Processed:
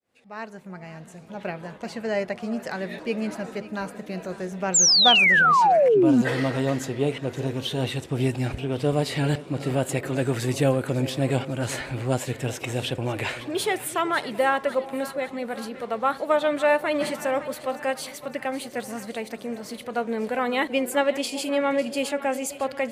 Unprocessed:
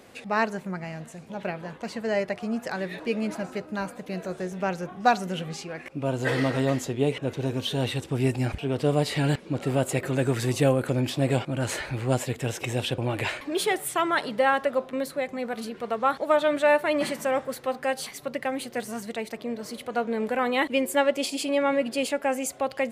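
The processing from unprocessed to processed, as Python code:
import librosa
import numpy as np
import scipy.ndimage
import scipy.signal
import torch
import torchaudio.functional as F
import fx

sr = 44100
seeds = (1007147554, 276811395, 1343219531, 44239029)

y = fx.fade_in_head(x, sr, length_s=1.5)
y = fx.echo_split(y, sr, split_hz=840.0, low_ms=383, high_ms=550, feedback_pct=52, wet_db=-15)
y = fx.spec_paint(y, sr, seeds[0], shape='fall', start_s=4.74, length_s=1.48, low_hz=220.0, high_hz=7700.0, level_db=-17.0)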